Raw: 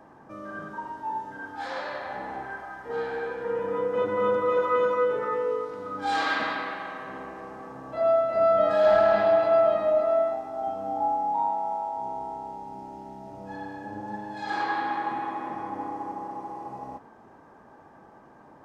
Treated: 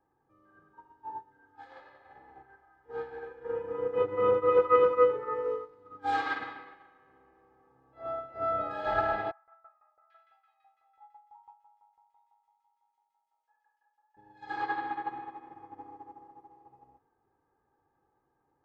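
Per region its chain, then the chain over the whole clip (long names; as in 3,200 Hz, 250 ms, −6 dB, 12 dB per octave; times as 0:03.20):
0:09.31–0:14.17: high-pass filter 1,000 Hz 24 dB per octave + shaped tremolo saw down 6 Hz, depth 85% + multiband delay without the direct sound lows, highs 790 ms, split 1,700 Hz
whole clip: bass and treble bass +6 dB, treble −8 dB; comb filter 2.4 ms, depth 66%; expander for the loud parts 2.5 to 1, over −35 dBFS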